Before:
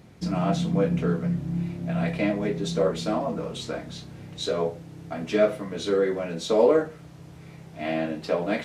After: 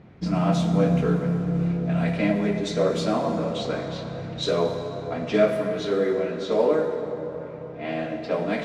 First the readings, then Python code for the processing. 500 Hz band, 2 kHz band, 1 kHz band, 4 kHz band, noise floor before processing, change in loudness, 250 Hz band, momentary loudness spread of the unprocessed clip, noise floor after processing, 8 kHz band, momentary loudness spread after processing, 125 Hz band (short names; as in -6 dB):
+1.0 dB, +1.5 dB, +2.0 dB, +1.5 dB, -46 dBFS, +1.5 dB, +3.0 dB, 17 LU, -37 dBFS, -1.5 dB, 10 LU, +3.0 dB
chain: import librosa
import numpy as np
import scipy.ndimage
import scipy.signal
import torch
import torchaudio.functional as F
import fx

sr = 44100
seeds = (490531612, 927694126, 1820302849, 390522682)

y = fx.rider(x, sr, range_db=4, speed_s=2.0)
y = fx.env_lowpass(y, sr, base_hz=2300.0, full_db=-19.5)
y = fx.rev_plate(y, sr, seeds[0], rt60_s=4.2, hf_ratio=0.5, predelay_ms=0, drr_db=4.5)